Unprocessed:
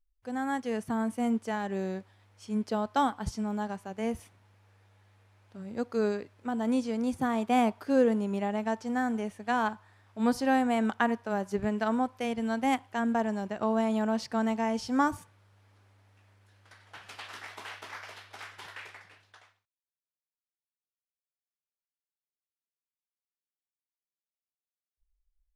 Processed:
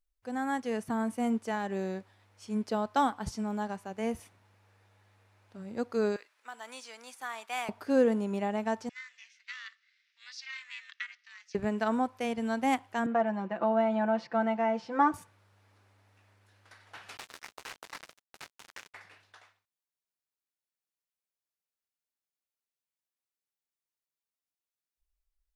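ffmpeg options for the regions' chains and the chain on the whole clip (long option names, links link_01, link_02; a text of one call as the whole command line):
ffmpeg -i in.wav -filter_complex "[0:a]asettb=1/sr,asplit=3[link_01][link_02][link_03];[link_01]atrim=end=6.164[link_04];[link_02]atrim=start=6.16:end=7.69,asetpts=PTS-STARTPTS,afade=type=in:duration=0.004:curve=qsin,afade=type=out:start_time=1.526:duration=0.004:curve=qsin,highpass=1300,acrusher=bits=9:mode=log:mix=0:aa=0.000001[link_05];[link_03]atrim=start=7.686[link_06];[link_04][link_05]acrossfade=duration=0.004:curve1=hsin:curve2=qsin[link_07];[link_07][link_06]acrossfade=duration=0.004:curve1=qsin:curve2=hsin,asettb=1/sr,asplit=3[link_08][link_09][link_10];[link_08]atrim=end=8.894[link_11];[link_09]atrim=start=8.89:end=11.55,asetpts=PTS-STARTPTS,afade=type=in:duration=0.004:curve=qsin,afade=type=out:start_time=2.656:duration=0.004:curve=qsin,highshelf=frequency=4500:gain=4.5,aeval=exprs='val(0)*sin(2*PI*280*n/s)':channel_layout=same,asuperpass=centerf=3400:order=8:qfactor=0.83[link_12];[link_10]atrim=start=11.546[link_13];[link_11][link_12]acrossfade=duration=0.004:curve1=hsin:curve2=qsin[link_14];[link_14][link_13]acrossfade=duration=0.004:curve1=qsin:curve2=hsin,asettb=1/sr,asplit=3[link_15][link_16][link_17];[link_15]atrim=end=13.064[link_18];[link_16]atrim=start=13.06:end=15.14,asetpts=PTS-STARTPTS,afade=type=in:duration=0.004:curve=qsin,afade=type=out:start_time=2.076:duration=0.004:curve=qsin,highpass=190,lowpass=2400,aecho=1:1:5.9:0.77,atrim=end_sample=91728[link_19];[link_17]atrim=start=15.136[link_20];[link_18][link_19]acrossfade=duration=0.004:curve1=hsin:curve2=qsin[link_21];[link_21][link_20]acrossfade=duration=0.004:curve1=qsin:curve2=hsin,asettb=1/sr,asplit=3[link_22][link_23][link_24];[link_22]atrim=end=17.174[link_25];[link_23]atrim=start=17.17:end=18.94,asetpts=PTS-STARTPTS,afade=type=in:duration=0.004:curve=qsin,afade=type=out:start_time=1.766:duration=0.004:curve=qsin,agate=range=-33dB:threshold=-47dB:ratio=3:release=100:detection=peak,acrusher=bits=5:mix=0:aa=0.5[link_26];[link_24]atrim=start=18.936[link_27];[link_25][link_26]acrossfade=duration=0.004:curve1=hsin:curve2=qsin[link_28];[link_28][link_27]acrossfade=duration=0.004:curve1=qsin:curve2=hsin,lowshelf=frequency=120:gain=-6.5,bandreject=frequency=3200:width=29" out.wav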